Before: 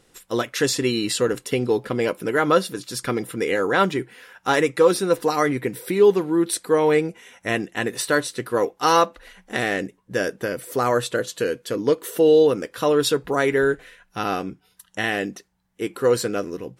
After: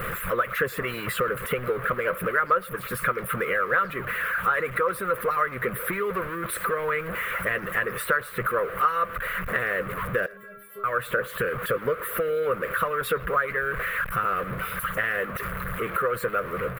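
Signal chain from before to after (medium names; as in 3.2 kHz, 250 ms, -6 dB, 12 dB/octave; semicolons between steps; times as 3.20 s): jump at every zero crossing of -23 dBFS; harmonic-percussive split harmonic -12 dB; FFT filter 180 Hz 0 dB, 290 Hz -16 dB, 520 Hz +3 dB, 830 Hz -13 dB, 1.2 kHz +10 dB, 2.2 kHz 0 dB, 5.9 kHz -29 dB, 12 kHz -4 dB; compression 2.5:1, threshold -28 dBFS, peak gain reduction 13.5 dB; 10.26–10.84 s: inharmonic resonator 200 Hz, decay 0.63 s, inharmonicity 0.008; speakerphone echo 110 ms, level -21 dB; trim +3.5 dB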